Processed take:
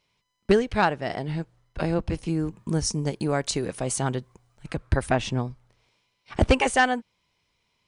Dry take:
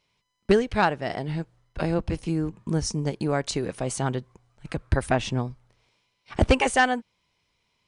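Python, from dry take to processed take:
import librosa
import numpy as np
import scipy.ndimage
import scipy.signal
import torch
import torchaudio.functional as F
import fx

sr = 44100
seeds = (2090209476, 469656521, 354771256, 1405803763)

y = fx.high_shelf(x, sr, hz=8200.0, db=9.0, at=(2.39, 4.67))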